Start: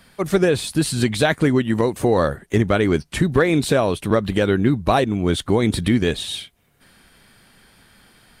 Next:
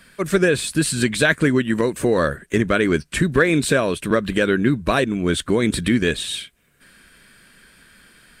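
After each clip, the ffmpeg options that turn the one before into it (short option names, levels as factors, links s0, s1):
-af "equalizer=f=100:t=o:w=0.33:g=-11,equalizer=f=800:t=o:w=0.33:g=-11,equalizer=f=1600:t=o:w=0.33:g=7,equalizer=f=2500:t=o:w=0.33:g=4,equalizer=f=8000:t=o:w=0.33:g=6"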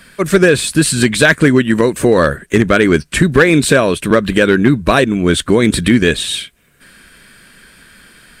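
-af "asoftclip=type=hard:threshold=0.355,volume=2.37"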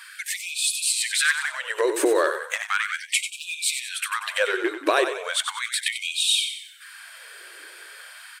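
-filter_complex "[0:a]acompressor=threshold=0.158:ratio=6,asplit=6[s0][s1][s2][s3][s4][s5];[s1]adelay=93,afreqshift=-33,volume=0.376[s6];[s2]adelay=186,afreqshift=-66,volume=0.166[s7];[s3]adelay=279,afreqshift=-99,volume=0.0724[s8];[s4]adelay=372,afreqshift=-132,volume=0.032[s9];[s5]adelay=465,afreqshift=-165,volume=0.0141[s10];[s0][s6][s7][s8][s9][s10]amix=inputs=6:normalize=0,afftfilt=real='re*gte(b*sr/1024,300*pow(2400/300,0.5+0.5*sin(2*PI*0.36*pts/sr)))':imag='im*gte(b*sr/1024,300*pow(2400/300,0.5+0.5*sin(2*PI*0.36*pts/sr)))':win_size=1024:overlap=0.75"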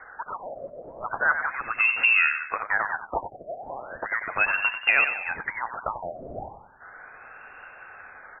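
-af "lowpass=f=2600:t=q:w=0.5098,lowpass=f=2600:t=q:w=0.6013,lowpass=f=2600:t=q:w=0.9,lowpass=f=2600:t=q:w=2.563,afreqshift=-3100"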